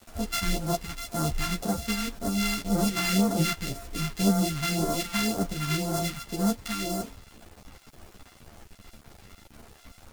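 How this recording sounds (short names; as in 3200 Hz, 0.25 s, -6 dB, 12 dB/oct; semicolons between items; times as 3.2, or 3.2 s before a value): a buzz of ramps at a fixed pitch in blocks of 64 samples; phasing stages 2, 1.9 Hz, lowest notch 460–2500 Hz; a quantiser's noise floor 8-bit, dither none; a shimmering, thickened sound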